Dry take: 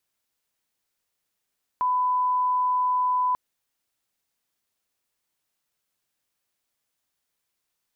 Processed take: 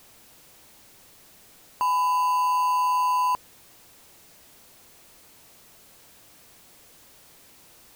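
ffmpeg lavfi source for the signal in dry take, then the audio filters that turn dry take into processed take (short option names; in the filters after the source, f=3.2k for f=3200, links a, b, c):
-f lavfi -i "sine=f=1000:d=1.54:r=44100,volume=-1.94dB"
-filter_complex "[0:a]aeval=exprs='val(0)+0.5*0.00422*sgn(val(0))':c=same,asplit=2[a][b];[b]acrusher=samples=24:mix=1:aa=0.000001,volume=-9.5dB[c];[a][c]amix=inputs=2:normalize=0"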